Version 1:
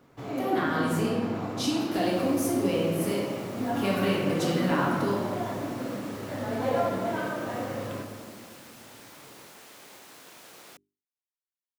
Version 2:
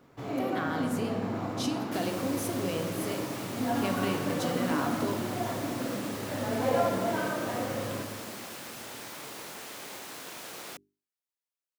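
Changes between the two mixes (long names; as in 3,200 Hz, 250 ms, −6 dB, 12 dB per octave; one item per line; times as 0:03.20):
speech: send −10.5 dB
second sound +7.0 dB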